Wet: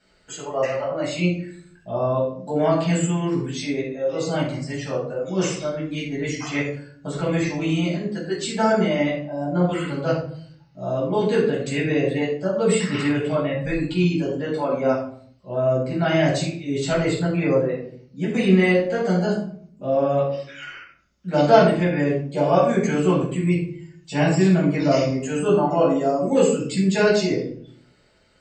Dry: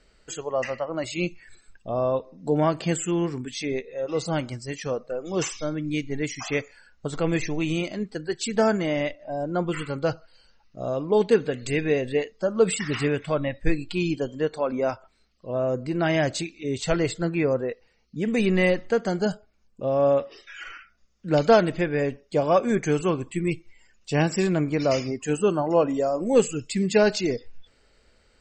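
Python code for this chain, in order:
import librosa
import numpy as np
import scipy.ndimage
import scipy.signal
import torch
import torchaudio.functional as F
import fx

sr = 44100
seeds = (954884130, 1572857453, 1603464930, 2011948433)

y = scipy.signal.sosfilt(scipy.signal.butter(2, 77.0, 'highpass', fs=sr, output='sos'), x)
y = fx.hum_notches(y, sr, base_hz=50, count=7)
y = fx.room_shoebox(y, sr, seeds[0], volume_m3=630.0, walls='furnished', distance_m=8.0)
y = F.gain(torch.from_numpy(y), -7.5).numpy()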